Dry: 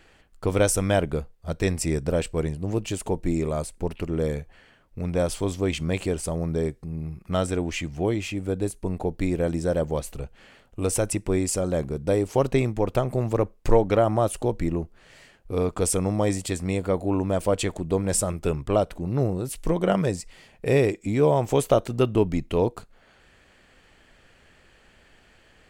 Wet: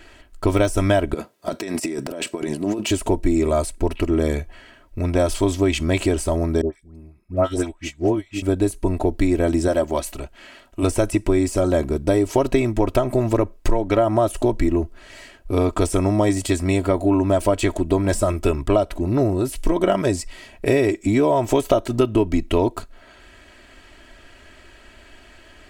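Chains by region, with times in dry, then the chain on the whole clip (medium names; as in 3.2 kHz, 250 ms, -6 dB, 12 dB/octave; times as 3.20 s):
1.14–2.91 s: high-pass 160 Hz 24 dB/octave + compressor with a negative ratio -33 dBFS
6.61–8.42 s: phase dispersion highs, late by 120 ms, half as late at 980 Hz + upward expansion 2.5:1, over -35 dBFS
9.68–10.83 s: bass shelf 170 Hz -10 dB + band-stop 460 Hz, Q 5.8
whole clip: de-esser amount 65%; comb 3.1 ms, depth 69%; compression, threshold -21 dBFS; trim +7.5 dB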